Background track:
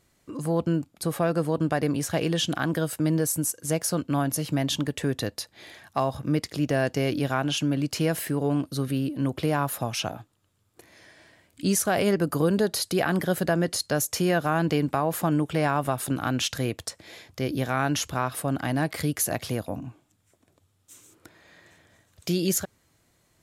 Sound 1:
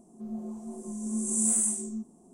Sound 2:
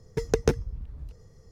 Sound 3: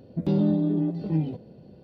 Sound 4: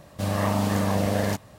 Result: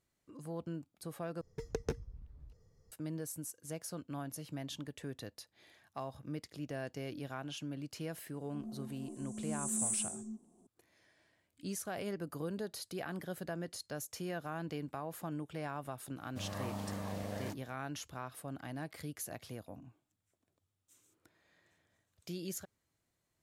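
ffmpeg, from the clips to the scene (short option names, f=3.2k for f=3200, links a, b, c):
-filter_complex "[0:a]volume=-17dB,asplit=2[a][b];[a]atrim=end=1.414[c];[2:a]atrim=end=1.51,asetpts=PTS-STARTPTS,volume=-14dB[d];[b]atrim=start=2.916[e];[1:a]atrim=end=2.33,asetpts=PTS-STARTPTS,volume=-9dB,afade=t=in:d=0.004:c=hsin,afade=t=out:st=2.326:d=0.004:c=hsin,adelay=367794S[f];[4:a]atrim=end=1.58,asetpts=PTS-STARTPTS,volume=-17dB,afade=t=in:d=0.004:c=hsin,afade=t=out:st=1.576:d=0.004:c=hsin,adelay=16170[g];[c][d]acrossfade=d=0.004:c1=hsin:c2=hsin[h];[h][e]acrossfade=d=0.004:c1=hsin:c2=hsin[i];[i][f][g]amix=inputs=3:normalize=0"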